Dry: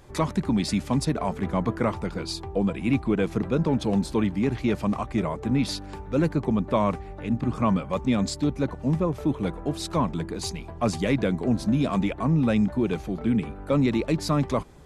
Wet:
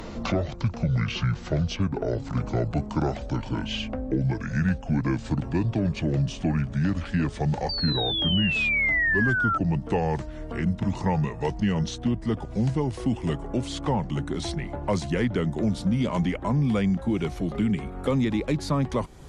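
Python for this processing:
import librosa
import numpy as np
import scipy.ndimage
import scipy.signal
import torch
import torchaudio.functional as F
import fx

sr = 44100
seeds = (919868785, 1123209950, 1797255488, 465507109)

y = fx.speed_glide(x, sr, from_pct=58, to_pct=96)
y = fx.spec_paint(y, sr, seeds[0], shape='fall', start_s=7.69, length_s=1.89, low_hz=1300.0, high_hz=4700.0, level_db=-22.0)
y = fx.band_squash(y, sr, depth_pct=70)
y = y * librosa.db_to_amplitude(-1.5)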